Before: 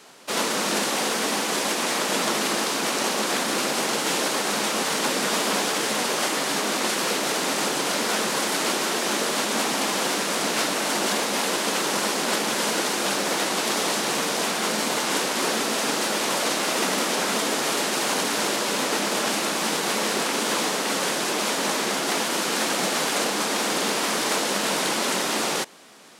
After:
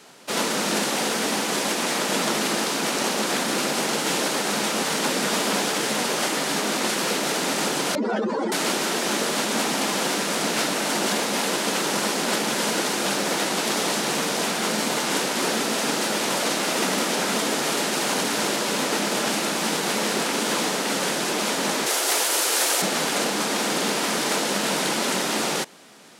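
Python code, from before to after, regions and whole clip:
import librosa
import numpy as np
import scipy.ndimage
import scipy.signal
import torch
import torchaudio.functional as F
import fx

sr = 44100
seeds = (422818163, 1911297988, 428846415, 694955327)

y = fx.chain(x, sr, fx.spec_expand(power=3.3),
    fx.steep_lowpass(hz=11000.0, slope=36), at=(7.95, 8.52))
y = fx.chain(y, sr, fx.highpass(hz=370.0, slope=24),
    fx.high_shelf(hz=7100.0, db=12.0), at=(21.86, 22.82))
y = fx.peak_eq(y, sr, hz=150.0, db=4.0, octaves=1.6)
y = fx.notch(y, sr, hz=1100.0, q=21.0)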